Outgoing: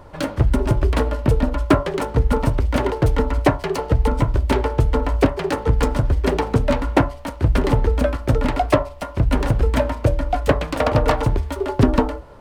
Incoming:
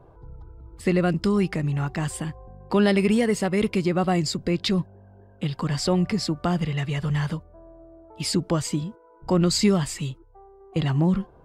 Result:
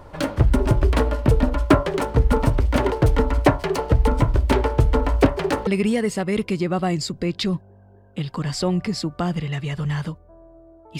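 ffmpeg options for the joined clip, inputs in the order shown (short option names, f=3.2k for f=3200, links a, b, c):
-filter_complex "[0:a]apad=whole_dur=10.99,atrim=end=10.99,atrim=end=5.672[a];[1:a]atrim=start=2.918:end=8.24[b];[a][b]acrossfade=d=0.004:c1=hsin:c2=hsin"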